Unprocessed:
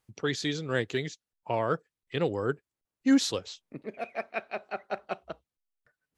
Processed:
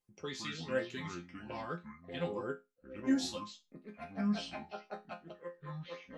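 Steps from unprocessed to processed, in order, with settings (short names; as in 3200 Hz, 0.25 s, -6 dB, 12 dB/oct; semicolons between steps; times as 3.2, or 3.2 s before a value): echoes that change speed 85 ms, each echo -5 st, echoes 2, each echo -6 dB; LFO notch sine 1.7 Hz 380–4200 Hz; resonator bank F3 minor, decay 0.22 s; gain +5.5 dB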